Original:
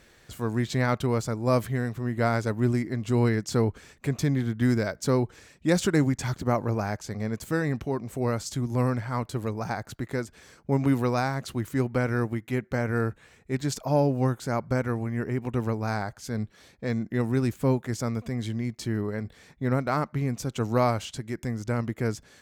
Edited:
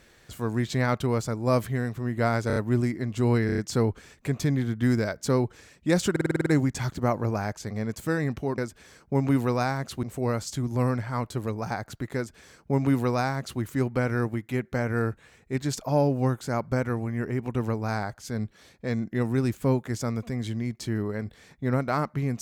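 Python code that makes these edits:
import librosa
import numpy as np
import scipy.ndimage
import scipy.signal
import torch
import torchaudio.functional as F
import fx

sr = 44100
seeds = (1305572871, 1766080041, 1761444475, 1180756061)

y = fx.edit(x, sr, fx.stutter(start_s=2.47, slice_s=0.03, count=4),
    fx.stutter(start_s=3.37, slice_s=0.03, count=5),
    fx.stutter(start_s=5.9, slice_s=0.05, count=8),
    fx.duplicate(start_s=10.15, length_s=1.45, to_s=8.02), tone=tone)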